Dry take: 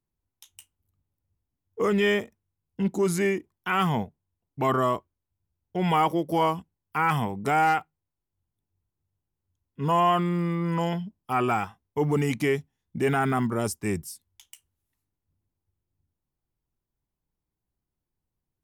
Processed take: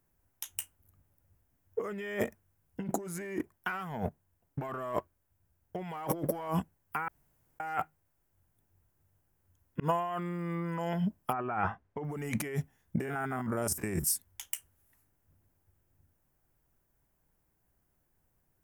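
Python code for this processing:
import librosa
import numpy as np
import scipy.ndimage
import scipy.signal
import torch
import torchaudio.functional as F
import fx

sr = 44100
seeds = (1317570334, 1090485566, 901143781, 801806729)

y = fx.leveller(x, sr, passes=1, at=(2.9, 6.48))
y = fx.lowpass(y, sr, hz=fx.line((11.32, 1400.0), (12.03, 3500.0)), slope=12, at=(11.32, 12.03), fade=0.02)
y = fx.spec_steps(y, sr, hold_ms=50, at=(13.0, 14.07))
y = fx.edit(y, sr, fx.room_tone_fill(start_s=7.08, length_s=0.52),
    fx.fade_in_span(start_s=9.8, length_s=0.4), tone=tone)
y = fx.high_shelf(y, sr, hz=11000.0, db=9.5)
y = fx.over_compress(y, sr, threshold_db=-35.0, ratio=-1.0)
y = fx.graphic_eq_15(y, sr, hz=(630, 1600, 4000), db=(6, 7, -7))
y = y * librosa.db_to_amplitude(-1.5)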